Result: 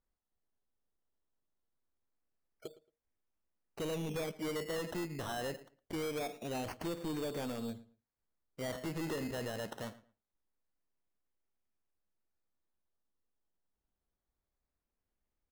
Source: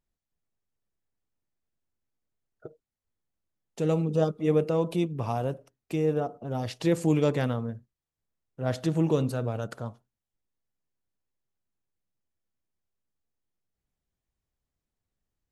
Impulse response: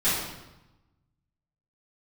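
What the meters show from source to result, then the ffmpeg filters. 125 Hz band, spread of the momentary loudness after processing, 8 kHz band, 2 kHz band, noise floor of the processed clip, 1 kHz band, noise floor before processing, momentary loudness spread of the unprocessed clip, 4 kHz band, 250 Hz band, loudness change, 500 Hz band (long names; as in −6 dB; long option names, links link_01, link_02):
−16.5 dB, 12 LU, −1.5 dB, −3.0 dB, below −85 dBFS, −8.5 dB, below −85 dBFS, 11 LU, −2.0 dB, −12.0 dB, −11.5 dB, −11.5 dB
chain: -filter_complex "[0:a]equalizer=frequency=120:width=1.7:gain=-10,acompressor=threshold=-28dB:ratio=5,aresample=11025,asoftclip=type=tanh:threshold=-29.5dB,aresample=44100,acrusher=samples=15:mix=1:aa=0.000001:lfo=1:lforange=9:lforate=0.24,asoftclip=type=hard:threshold=-33dB,asplit=2[link_01][link_02];[link_02]adelay=112,lowpass=frequency=3400:poles=1,volume=-18dB,asplit=2[link_03][link_04];[link_04]adelay=112,lowpass=frequency=3400:poles=1,volume=0.21[link_05];[link_01][link_03][link_05]amix=inputs=3:normalize=0,volume=-1.5dB"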